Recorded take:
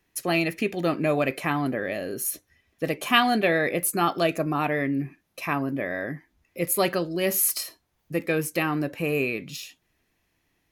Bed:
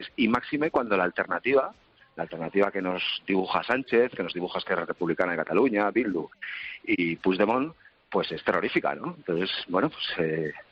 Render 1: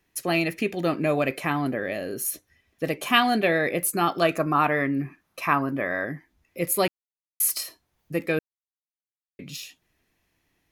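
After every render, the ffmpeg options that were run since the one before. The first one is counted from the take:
-filter_complex "[0:a]asettb=1/sr,asplit=3[s0][s1][s2];[s0]atrim=end=4.224[s3];[s1]atrim=start=4.22:end=6.05,asetpts=PTS-STARTPTS,afade=t=in:d=0.004:c=qsin,afade=t=out:st=1.826:d=0.004:c=qsin,equalizer=f=1200:t=o:w=0.97:g=8.5[s4];[s2]atrim=start=6.046[s5];[s3][s4]acrossfade=d=0.004:c1=hsin:c2=qsin[s6];[s6][s5]acrossfade=d=0.004:c1=qsin:c2=hsin,asplit=5[s7][s8][s9][s10][s11];[s7]atrim=end=6.88,asetpts=PTS-STARTPTS,afade=t=out:st=6.876:d=0.004:c=hsin[s12];[s8]atrim=start=6.88:end=7.4,asetpts=PTS-STARTPTS,volume=0[s13];[s9]atrim=start=7.4:end=8.39,asetpts=PTS-STARTPTS,afade=t=in:d=0.004:c=hsin,afade=t=out:st=0.986:d=0.004:c=hsin[s14];[s10]atrim=start=8.39:end=9.39,asetpts=PTS-STARTPTS,volume=0[s15];[s11]atrim=start=9.39,asetpts=PTS-STARTPTS,afade=t=in:d=0.004:c=hsin[s16];[s12][s13][s14][s15][s16]concat=n=5:v=0:a=1"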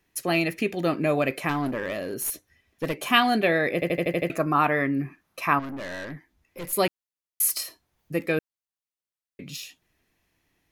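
-filter_complex "[0:a]asettb=1/sr,asplit=3[s0][s1][s2];[s0]atrim=end=1.494[s3];[s1]atrim=start=1.49:end=3.09,asetpts=PTS-STARTPTS,afade=t=in:d=0.004:c=qsin,afade=t=out:st=1.596:d=0.004:c=qsin,aeval=exprs='clip(val(0),-1,0.0562)':c=same[s4];[s2]atrim=start=3.086[s5];[s3][s4]acrossfade=d=0.004:c1=hsin:c2=qsin[s6];[s6][s5]acrossfade=d=0.004:c1=qsin:c2=hsin,asettb=1/sr,asplit=3[s7][s8][s9];[s7]atrim=end=5.594[s10];[s8]atrim=start=5.59:end=6.73,asetpts=PTS-STARTPTS,afade=t=in:d=0.004:c=qsin,afade=t=out:st=1.136:d=0.004:c=qsin,aeval=exprs='(tanh(39.8*val(0)+0.3)-tanh(0.3))/39.8':c=same[s11];[s9]atrim=start=6.726[s12];[s10][s11]acrossfade=d=0.004:c1=hsin:c2=qsin[s13];[s13][s12]acrossfade=d=0.004:c1=qsin:c2=hsin,asplit=8[s14][s15][s16][s17][s18][s19][s20][s21];[s14]atrim=end=3.822[s22];[s15]atrim=start=3.738:end=3.822[s23];[s16]atrim=start=3.738:end=3.822[s24];[s17]atrim=start=3.738:end=3.822[s25];[s18]atrim=start=3.738:end=3.822[s26];[s19]atrim=start=3.738:end=3.822[s27];[s20]atrim=start=3.738:end=3.822[s28];[s21]atrim=start=4.298[s29];[s22][s23]acrossfade=d=0.004:c1=hsin:c2=hsin[s30];[s30][s24]acrossfade=d=0.004:c1=hsin:c2=hsin[s31];[s31][s25]acrossfade=d=0.004:c1=hsin:c2=hsin[s32];[s32][s26]acrossfade=d=0.004:c1=hsin:c2=hsin[s33];[s33][s27]acrossfade=d=0.004:c1=hsin:c2=hsin[s34];[s34][s28]acrossfade=d=0.004:c1=hsin:c2=hsin[s35];[s35][s29]acrossfade=d=0.004:c1=hsin:c2=hsin"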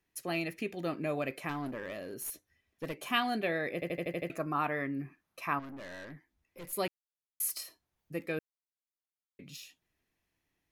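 -af "volume=0.299"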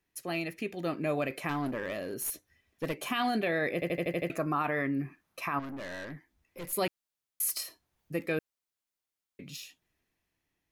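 -af "dynaudnorm=f=160:g=13:m=1.78,alimiter=limit=0.0891:level=0:latency=1:release=18"

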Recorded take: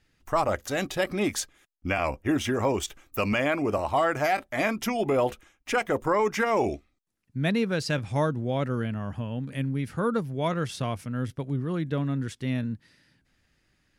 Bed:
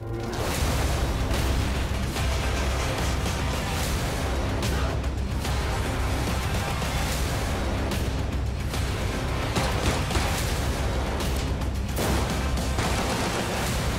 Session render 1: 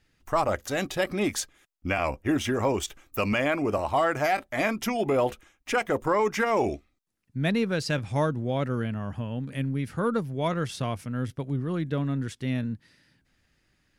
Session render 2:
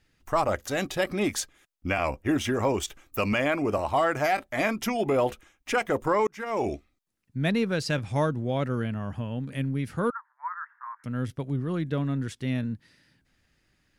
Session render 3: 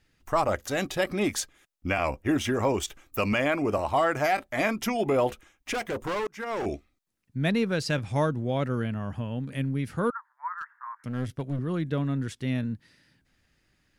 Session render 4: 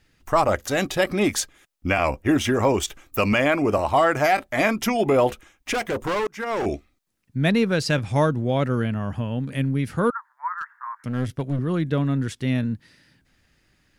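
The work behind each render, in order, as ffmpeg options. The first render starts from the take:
-af "aeval=exprs='0.211*(cos(1*acos(clip(val(0)/0.211,-1,1)))-cos(1*PI/2))+0.00168*(cos(6*acos(clip(val(0)/0.211,-1,1)))-cos(6*PI/2))+0.00237*(cos(8*acos(clip(val(0)/0.211,-1,1)))-cos(8*PI/2))':c=same"
-filter_complex "[0:a]asettb=1/sr,asplit=3[s0][s1][s2];[s0]atrim=end=10.104[s3];[s1]atrim=start=10.1:end=11.04,asetpts=PTS-STARTPTS,afade=t=in:d=0.004:c=qsin,afade=t=out:st=0.936:d=0.004:c=qsin,asuperpass=centerf=1300:order=12:qfactor=1.4[s4];[s2]atrim=start=11.036[s5];[s3][s4]acrossfade=d=0.004:c1=hsin:c2=qsin[s6];[s6][s5]acrossfade=d=0.004:c1=qsin:c2=hsin,asplit=2[s7][s8];[s7]atrim=end=6.27,asetpts=PTS-STARTPTS,afade=t=out:st=6.266:d=0.004:c=hsin[s9];[s8]atrim=start=6.27,asetpts=PTS-STARTPTS,afade=t=in:d=0.47[s10];[s9][s10]concat=n=2:v=0:a=1"
-filter_complex "[0:a]asettb=1/sr,asplit=3[s0][s1][s2];[s0]atrim=end=5.734[s3];[s1]atrim=start=5.73:end=6.66,asetpts=PTS-STARTPTS,afade=t=in:d=0.004:c=qsin,afade=t=out:st=0.926:d=0.004:c=qsin,asoftclip=type=hard:threshold=0.0447[s4];[s2]atrim=start=6.656[s5];[s3][s4]acrossfade=d=0.004:c1=hsin:c2=qsin[s6];[s6][s5]acrossfade=d=0.004:c1=qsin:c2=hsin,asettb=1/sr,asplit=3[s7][s8][s9];[s7]atrim=end=10.564[s10];[s8]atrim=start=10.56:end=11.59,asetpts=PTS-STARTPTS,afade=t=in:d=0.004:c=qsin,afade=t=out:st=1.026:d=0.004:c=qsin,aeval=exprs='clip(val(0),-1,0.0355)':c=same[s11];[s9]atrim=start=11.586[s12];[s10][s11]acrossfade=d=0.004:c1=hsin:c2=qsin[s13];[s13][s12]acrossfade=d=0.004:c1=qsin:c2=hsin"
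-af "volume=1.88"

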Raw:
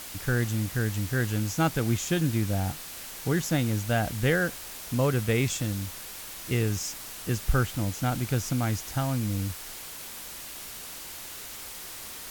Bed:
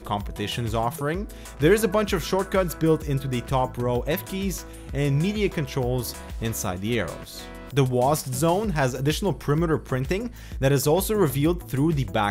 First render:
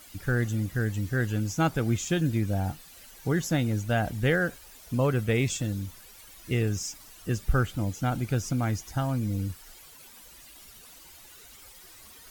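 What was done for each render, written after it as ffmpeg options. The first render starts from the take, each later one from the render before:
-af "afftdn=nr=13:nf=-41"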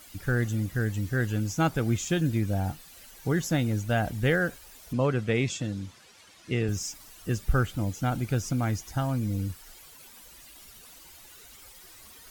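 -filter_complex "[0:a]asettb=1/sr,asplit=3[s0][s1][s2];[s0]atrim=end=4.934[s3];[s1]atrim=start=4.93:end=6.69,asetpts=PTS-STARTPTS,afade=t=in:d=0.004:c=qsin,afade=t=out:st=1.756:d=0.004:c=qsin,highpass=110,lowpass=6400[s4];[s2]atrim=start=6.686[s5];[s3][s4]acrossfade=d=0.004:c1=hsin:c2=qsin[s6];[s6][s5]acrossfade=d=0.004:c1=qsin:c2=hsin"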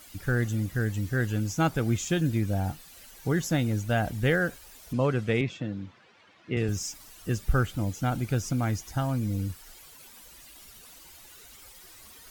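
-filter_complex "[0:a]asettb=1/sr,asplit=3[s0][s1][s2];[s0]atrim=end=5.414[s3];[s1]atrim=start=5.41:end=6.57,asetpts=PTS-STARTPTS,afade=t=in:d=0.004:c=qsin,afade=t=out:st=1.156:d=0.004:c=qsin,highpass=110,lowpass=2600[s4];[s2]atrim=start=6.566[s5];[s3][s4]acrossfade=d=0.004:c1=hsin:c2=qsin[s6];[s6][s5]acrossfade=d=0.004:c1=qsin:c2=hsin"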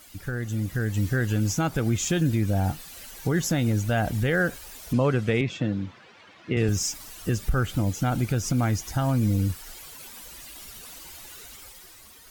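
-af "alimiter=limit=0.0891:level=0:latency=1:release=130,dynaudnorm=f=140:g=11:m=2.24"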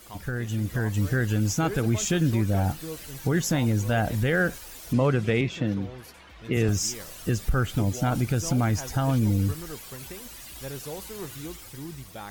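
-filter_complex "[1:a]volume=0.141[s0];[0:a][s0]amix=inputs=2:normalize=0"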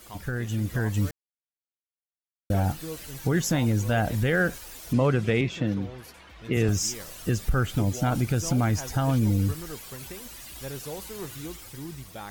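-filter_complex "[0:a]asplit=3[s0][s1][s2];[s0]atrim=end=1.11,asetpts=PTS-STARTPTS,afade=t=out:st=1.106:d=0.004:c=hsin[s3];[s1]atrim=start=1.11:end=2.5,asetpts=PTS-STARTPTS,volume=0[s4];[s2]atrim=start=2.5,asetpts=PTS-STARTPTS,afade=t=in:d=0.004:c=hsin[s5];[s3][s4][s5]concat=n=3:v=0:a=1"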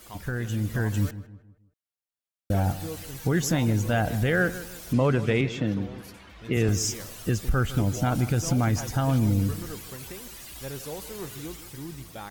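-filter_complex "[0:a]asplit=2[s0][s1];[s1]adelay=157,lowpass=f=2000:p=1,volume=0.2,asplit=2[s2][s3];[s3]adelay=157,lowpass=f=2000:p=1,volume=0.41,asplit=2[s4][s5];[s5]adelay=157,lowpass=f=2000:p=1,volume=0.41,asplit=2[s6][s7];[s7]adelay=157,lowpass=f=2000:p=1,volume=0.41[s8];[s0][s2][s4][s6][s8]amix=inputs=5:normalize=0"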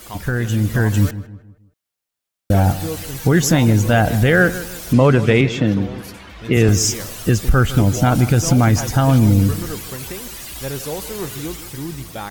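-af "volume=3.16"

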